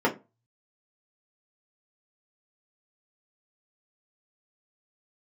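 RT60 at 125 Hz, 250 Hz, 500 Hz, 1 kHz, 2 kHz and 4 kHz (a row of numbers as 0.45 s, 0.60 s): 0.70 s, 0.30 s, 0.25 s, 0.25 s, 0.20 s, 0.15 s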